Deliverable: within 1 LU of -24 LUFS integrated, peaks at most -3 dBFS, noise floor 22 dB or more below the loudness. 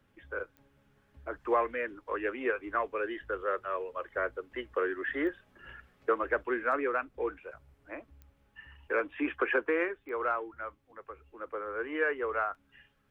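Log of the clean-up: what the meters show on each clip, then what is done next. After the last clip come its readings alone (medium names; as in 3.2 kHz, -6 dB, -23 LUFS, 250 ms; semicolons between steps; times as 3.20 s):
clicks found 4; loudness -33.0 LUFS; peak level -17.5 dBFS; loudness target -24.0 LUFS
-> de-click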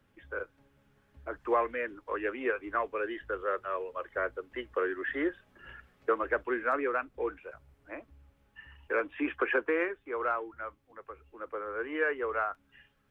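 clicks found 0; loudness -33.0 LUFS; peak level -17.5 dBFS; loudness target -24.0 LUFS
-> trim +9 dB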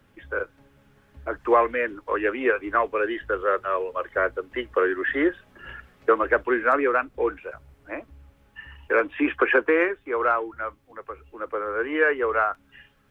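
loudness -24.0 LUFS; peak level -8.5 dBFS; noise floor -60 dBFS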